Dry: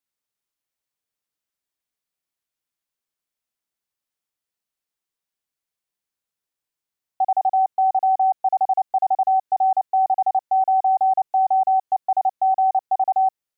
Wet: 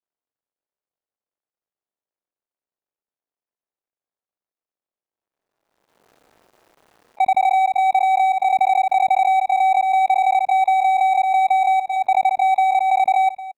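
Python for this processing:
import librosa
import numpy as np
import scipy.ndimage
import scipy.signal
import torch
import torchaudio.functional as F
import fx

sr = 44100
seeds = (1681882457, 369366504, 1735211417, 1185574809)

y = scipy.signal.medfilt(x, 41)
y = fx.low_shelf(y, sr, hz=500.0, db=-6.0)
y = fx.hum_notches(y, sr, base_hz=60, count=4)
y = fx.hpss(y, sr, part='percussive', gain_db=-8)
y = fx.peak_eq(y, sr, hz=630.0, db=9.5, octaves=2.9)
y = fx.level_steps(y, sr, step_db=21)
y = y + 10.0 ** (-16.0 / 20.0) * np.pad(y, (int(225 * sr / 1000.0), 0))[:len(y)]
y = fx.pre_swell(y, sr, db_per_s=39.0)
y = F.gain(torch.from_numpy(y), 6.0).numpy()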